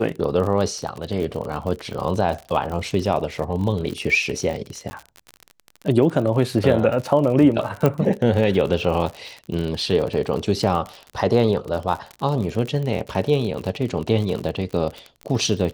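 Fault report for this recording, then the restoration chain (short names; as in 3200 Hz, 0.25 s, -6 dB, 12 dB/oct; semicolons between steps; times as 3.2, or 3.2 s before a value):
crackle 56/s -27 dBFS
4.9–4.91 gap 10 ms
7.86 pop -7 dBFS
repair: de-click; interpolate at 4.9, 10 ms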